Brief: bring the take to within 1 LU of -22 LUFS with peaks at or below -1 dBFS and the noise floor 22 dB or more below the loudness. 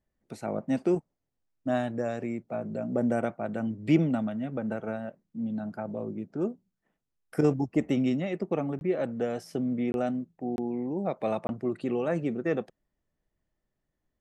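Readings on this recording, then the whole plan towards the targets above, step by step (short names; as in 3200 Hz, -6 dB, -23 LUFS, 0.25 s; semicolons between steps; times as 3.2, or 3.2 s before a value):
dropouts 4; longest dropout 21 ms; loudness -30.5 LUFS; peak -11.5 dBFS; loudness target -22.0 LUFS
-> interpolate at 8.79/9.92/10.56/11.47, 21 ms; gain +8.5 dB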